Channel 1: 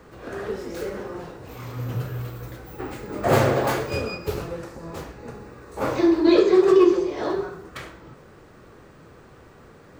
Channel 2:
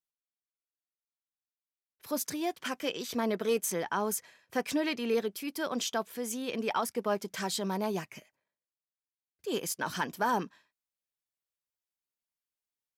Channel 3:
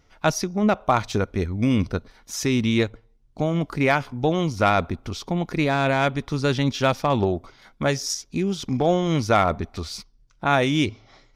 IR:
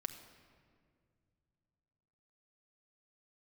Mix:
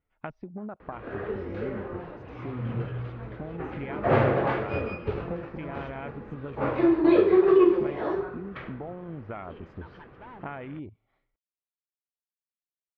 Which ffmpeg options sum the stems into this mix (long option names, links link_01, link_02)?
-filter_complex "[0:a]adelay=800,volume=-3dB[link_01];[1:a]asoftclip=type=tanh:threshold=-29dB,volume=-13.5dB[link_02];[2:a]afwtdn=0.0447,acompressor=threshold=-29dB:ratio=12,volume=-5.5dB[link_03];[link_01][link_02][link_03]amix=inputs=3:normalize=0,lowpass=frequency=2800:width=0.5412,lowpass=frequency=2800:width=1.3066"